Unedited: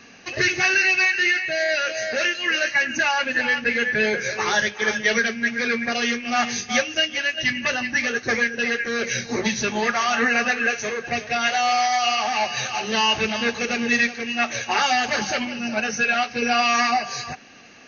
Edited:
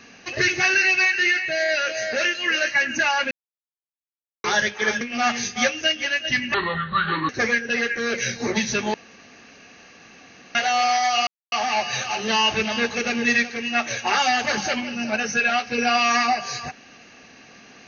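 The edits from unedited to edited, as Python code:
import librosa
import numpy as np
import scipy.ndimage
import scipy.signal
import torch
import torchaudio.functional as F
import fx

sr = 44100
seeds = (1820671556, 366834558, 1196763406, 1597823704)

y = fx.edit(x, sr, fx.silence(start_s=3.31, length_s=1.13),
    fx.cut(start_s=5.01, length_s=1.13),
    fx.speed_span(start_s=7.67, length_s=0.51, speed=0.68),
    fx.room_tone_fill(start_s=9.83, length_s=1.61),
    fx.insert_silence(at_s=12.16, length_s=0.25), tone=tone)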